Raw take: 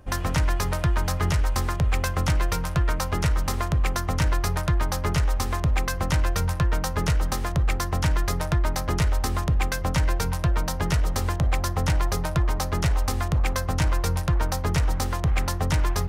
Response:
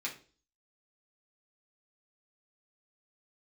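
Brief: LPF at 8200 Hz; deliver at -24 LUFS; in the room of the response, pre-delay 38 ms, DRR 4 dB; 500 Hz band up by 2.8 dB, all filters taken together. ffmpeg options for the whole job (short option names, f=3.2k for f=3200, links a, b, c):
-filter_complex "[0:a]lowpass=8.2k,equalizer=f=500:t=o:g=3.5,asplit=2[a][b];[1:a]atrim=start_sample=2205,adelay=38[c];[b][c]afir=irnorm=-1:irlink=0,volume=-6.5dB[d];[a][d]amix=inputs=2:normalize=0,volume=0.5dB"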